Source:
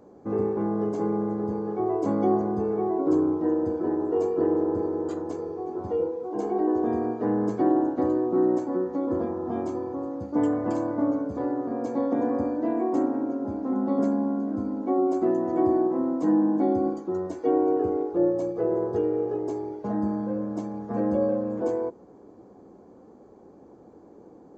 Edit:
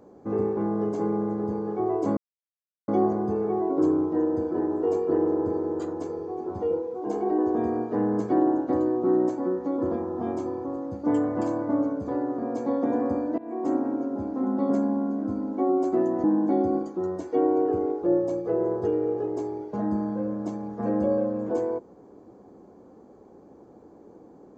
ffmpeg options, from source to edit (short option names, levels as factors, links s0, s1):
-filter_complex "[0:a]asplit=4[s0][s1][s2][s3];[s0]atrim=end=2.17,asetpts=PTS-STARTPTS,afade=t=out:st=2.166:d=0.004:c=hsin,apad=pad_dur=0.71[s4];[s1]atrim=start=2.17:end=12.67,asetpts=PTS-STARTPTS,afade=t=in:d=0.004:c=hsin,afade=t=out:st=10.496:d=0.004:c=hsin:silence=0.0841395[s5];[s2]atrim=start=12.67:end=15.532,asetpts=PTS-STARTPTS,afade=t=in:d=0.38:silence=0.0841395[s6];[s3]atrim=start=16.348[s7];[s4][s5][s6]concat=n=3:v=0:a=1[s8];[s8][s7]acrossfade=d=0.004:c1=hsin:c2=hsin"